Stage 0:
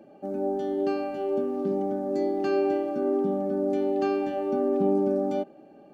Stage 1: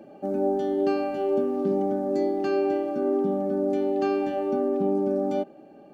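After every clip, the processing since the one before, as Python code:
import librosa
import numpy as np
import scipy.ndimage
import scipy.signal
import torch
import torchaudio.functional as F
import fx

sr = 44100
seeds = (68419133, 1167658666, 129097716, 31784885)

y = fx.rider(x, sr, range_db=3, speed_s=0.5)
y = y * 10.0 ** (1.5 / 20.0)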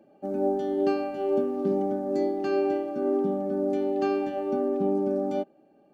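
y = fx.upward_expand(x, sr, threshold_db=-43.0, expansion=1.5)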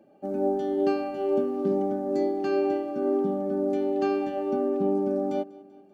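y = fx.echo_feedback(x, sr, ms=194, feedback_pct=59, wet_db=-22)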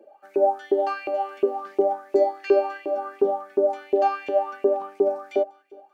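y = fx.filter_lfo_highpass(x, sr, shape='saw_up', hz=2.8, low_hz=390.0, high_hz=2600.0, q=5.9)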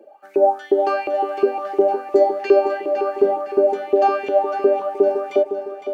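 y = fx.echo_feedback(x, sr, ms=509, feedback_pct=44, wet_db=-9.5)
y = y * 10.0 ** (4.5 / 20.0)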